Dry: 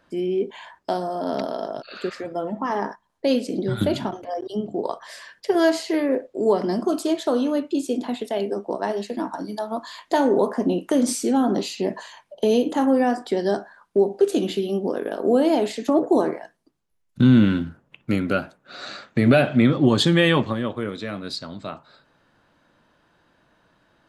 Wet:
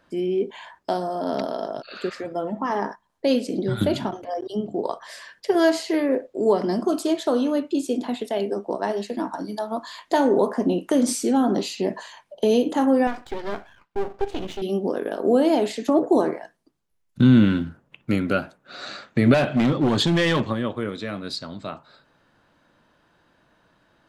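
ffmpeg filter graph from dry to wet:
-filter_complex "[0:a]asettb=1/sr,asplit=3[s0][s1][s2];[s0]atrim=end=13.074[s3];[s1]atrim=start=13.07:end=14.62,asetpts=PTS-STARTPTS,afade=t=in:d=0.004:c=qsin,afade=t=out:st=1.546:d=0.004:c=qsin,lowpass=2800,tiltshelf=f=1300:g=-4,aeval=exprs='max(val(0),0)':c=same[s4];[s2]atrim=start=14.616[s5];[s3][s4]acrossfade=d=0.004:c1=hsin:c2=qsin[s6];[s6][s5]acrossfade=d=0.004:c1=qsin:c2=hsin,asettb=1/sr,asplit=3[s7][s8][s9];[s7]atrim=end=19.344[s10];[s8]atrim=start=19.34:end=20.48,asetpts=PTS-STARTPTS,afade=t=in:d=0.004:c=qsin,afade=t=out:st=1.136:d=0.004:c=qsin,asoftclip=type=hard:threshold=0.168,acrossover=split=9400[s11][s12];[s12]acompressor=threshold=0.00158:ratio=4:attack=1:release=60[s13];[s11][s13]amix=inputs=2:normalize=0[s14];[s9]atrim=start=20.476[s15];[s10][s14]acrossfade=d=0.004:c1=hsin:c2=qsin[s16];[s16][s15]acrossfade=d=0.004:c1=qsin:c2=hsin"

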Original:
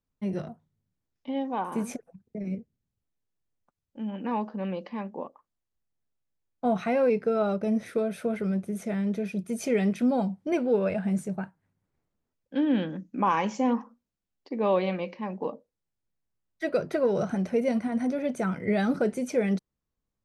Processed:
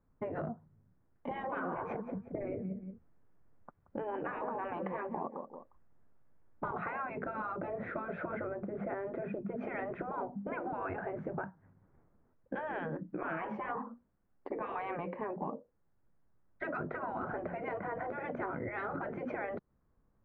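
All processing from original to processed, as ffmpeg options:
-filter_complex "[0:a]asettb=1/sr,asplit=3[s0][s1][s2];[s0]atrim=end=1.314[s3];[s1]atrim=start=1.31:end=6.71,asetpts=PTS-STARTPTS,afade=t=in:d=0.004:c=qsin,afade=t=out:st=5.396:d=0.004:c=qsin,acontrast=30,aecho=1:1:178|356:0.141|0.0297,atrim=end_sample=238140[s4];[s2]atrim=start=6.706[s5];[s3][s4]acrossfade=d=0.004:c1=hsin:c2=qsin[s6];[s6][s5]acrossfade=d=0.004:c1=qsin:c2=hsin,asettb=1/sr,asplit=3[s7][s8][s9];[s7]atrim=end=8.474[s10];[s8]atrim=start=8.47:end=10.73,asetpts=PTS-STARTPTS,afade=t=in:d=0.004:c=qsin,afade=t=out:st=2.256:d=0.004:c=qsin,lowpass=f=2000:p=1,bandreject=f=50:t=h:w=6,bandreject=f=100:t=h:w=6,bandreject=f=150:t=h:w=6,bandreject=f=200:t=h:w=6,bandreject=f=250:t=h:w=6[s11];[s9]atrim=start=10.726[s12];[s10][s11]acrossfade=d=0.004:c1=hsin:c2=qsin[s13];[s13][s12]acrossfade=d=0.004:c1=qsin:c2=hsin,afftfilt=real='re*lt(hypot(re,im),0.112)':imag='im*lt(hypot(re,im),0.112)':win_size=1024:overlap=0.75,lowpass=f=1600:w=0.5412,lowpass=f=1600:w=1.3066,acompressor=threshold=0.00398:ratio=6,volume=4.22"

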